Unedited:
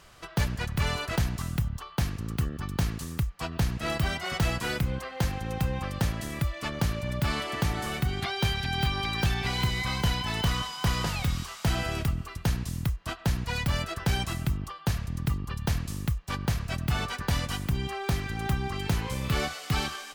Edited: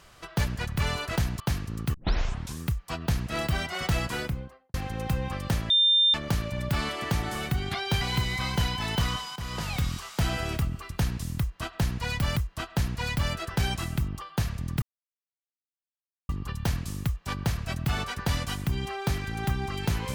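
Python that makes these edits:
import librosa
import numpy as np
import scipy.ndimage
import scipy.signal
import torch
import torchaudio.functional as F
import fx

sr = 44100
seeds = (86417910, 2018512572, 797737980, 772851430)

y = fx.studio_fade_out(x, sr, start_s=4.57, length_s=0.68)
y = fx.edit(y, sr, fx.cut(start_s=1.4, length_s=0.51),
    fx.tape_start(start_s=2.45, length_s=0.65),
    fx.bleep(start_s=6.21, length_s=0.44, hz=3600.0, db=-17.5),
    fx.cut(start_s=8.52, length_s=0.95),
    fx.fade_in_from(start_s=10.82, length_s=0.39, floor_db=-14.0),
    fx.repeat(start_s=12.85, length_s=0.97, count=2),
    fx.insert_silence(at_s=15.31, length_s=1.47), tone=tone)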